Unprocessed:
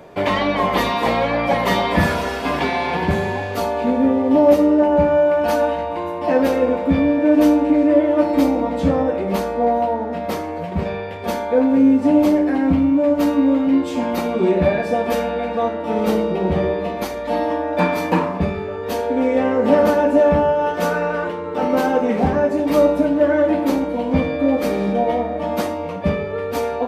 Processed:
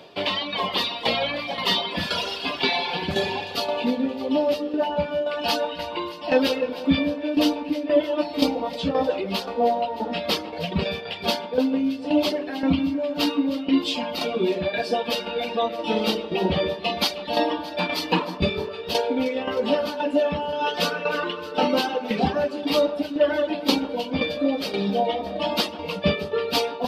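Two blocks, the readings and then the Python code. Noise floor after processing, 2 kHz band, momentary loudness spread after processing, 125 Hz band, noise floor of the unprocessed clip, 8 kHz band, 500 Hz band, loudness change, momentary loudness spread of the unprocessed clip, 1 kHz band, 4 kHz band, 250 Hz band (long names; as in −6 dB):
−35 dBFS, −3.5 dB, 4 LU, −8.0 dB, −27 dBFS, can't be measured, −7.0 dB, −6.0 dB, 9 LU, −6.0 dB, +7.5 dB, −8.0 dB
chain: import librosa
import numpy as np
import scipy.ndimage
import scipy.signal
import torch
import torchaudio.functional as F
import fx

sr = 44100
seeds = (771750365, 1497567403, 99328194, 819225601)

y = fx.dereverb_blind(x, sr, rt60_s=2.0)
y = fx.highpass(y, sr, hz=160.0, slope=6)
y = fx.band_shelf(y, sr, hz=3700.0, db=14.0, octaves=1.2)
y = fx.rider(y, sr, range_db=5, speed_s=0.5)
y = fx.tremolo_shape(y, sr, shape='saw_down', hz=1.9, depth_pct=70)
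y = fx.echo_alternate(y, sr, ms=155, hz=1500.0, feedback_pct=78, wet_db=-13)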